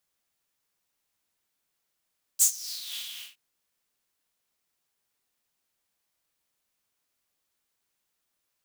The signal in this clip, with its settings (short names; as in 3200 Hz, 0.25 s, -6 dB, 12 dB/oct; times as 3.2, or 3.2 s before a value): synth patch with tremolo A#3, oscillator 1 triangle, detune 28 cents, sub -11 dB, noise -12.5 dB, filter highpass, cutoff 2700 Hz, Q 5.3, filter envelope 1.5 oct, filter decay 0.54 s, filter sustain 20%, attack 29 ms, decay 0.09 s, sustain -19 dB, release 0.28 s, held 0.69 s, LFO 3.9 Hz, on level 4.5 dB